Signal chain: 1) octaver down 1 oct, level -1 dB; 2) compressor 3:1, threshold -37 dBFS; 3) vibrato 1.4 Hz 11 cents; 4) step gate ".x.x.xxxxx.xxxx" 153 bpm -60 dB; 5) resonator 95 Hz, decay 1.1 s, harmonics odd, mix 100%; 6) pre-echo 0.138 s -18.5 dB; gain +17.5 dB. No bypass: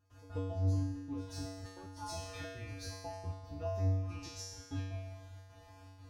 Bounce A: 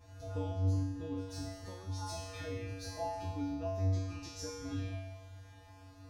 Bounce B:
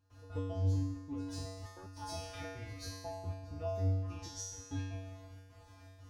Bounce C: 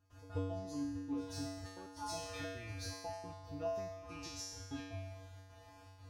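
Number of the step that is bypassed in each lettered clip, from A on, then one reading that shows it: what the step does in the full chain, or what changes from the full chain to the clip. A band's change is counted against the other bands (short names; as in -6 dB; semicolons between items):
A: 4, 1 kHz band +2.5 dB; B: 3, 8 kHz band +3.0 dB; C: 1, 125 Hz band -11.0 dB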